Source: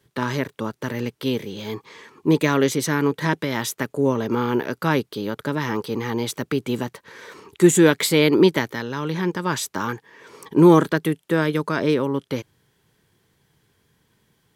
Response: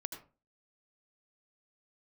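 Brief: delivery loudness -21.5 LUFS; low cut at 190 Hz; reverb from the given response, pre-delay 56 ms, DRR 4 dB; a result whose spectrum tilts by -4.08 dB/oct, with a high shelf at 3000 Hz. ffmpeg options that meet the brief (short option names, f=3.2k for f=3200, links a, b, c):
-filter_complex "[0:a]highpass=190,highshelf=f=3k:g=4.5,asplit=2[a][b];[1:a]atrim=start_sample=2205,adelay=56[c];[b][c]afir=irnorm=-1:irlink=0,volume=-2.5dB[d];[a][d]amix=inputs=2:normalize=0,volume=-1.5dB"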